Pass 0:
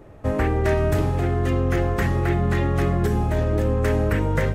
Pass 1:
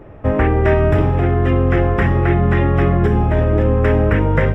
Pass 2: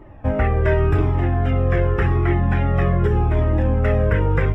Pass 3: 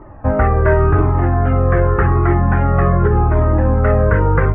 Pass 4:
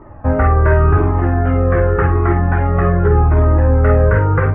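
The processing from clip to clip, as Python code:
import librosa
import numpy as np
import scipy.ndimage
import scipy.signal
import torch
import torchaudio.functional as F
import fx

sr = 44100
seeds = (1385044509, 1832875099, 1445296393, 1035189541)

y1 = scipy.signal.savgol_filter(x, 25, 4, mode='constant')
y1 = y1 * 10.0 ** (6.5 / 20.0)
y2 = fx.comb_cascade(y1, sr, direction='falling', hz=0.87)
y3 = fx.lowpass_res(y2, sr, hz=1300.0, q=2.0)
y3 = y3 * 10.0 ** (4.0 / 20.0)
y4 = fx.room_early_taps(y3, sr, ms=(12, 50), db=(-8.0, -7.5))
y4 = y4 * 10.0 ** (-1.0 / 20.0)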